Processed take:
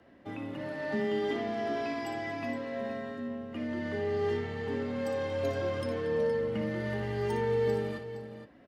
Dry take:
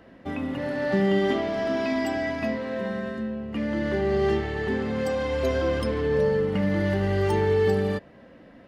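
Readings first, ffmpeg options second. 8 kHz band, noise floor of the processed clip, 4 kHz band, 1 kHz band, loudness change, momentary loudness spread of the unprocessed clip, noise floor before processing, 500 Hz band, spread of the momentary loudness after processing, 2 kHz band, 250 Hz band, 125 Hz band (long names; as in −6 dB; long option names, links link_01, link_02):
can't be measured, −56 dBFS, −7.5 dB, −6.0 dB, −7.5 dB, 8 LU, −50 dBFS, −6.5 dB, 9 LU, −7.5 dB, −9.0 dB, −9.5 dB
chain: -af "aecho=1:1:59|231|467:0.376|0.133|0.266,afreqshift=21,volume=-8.5dB"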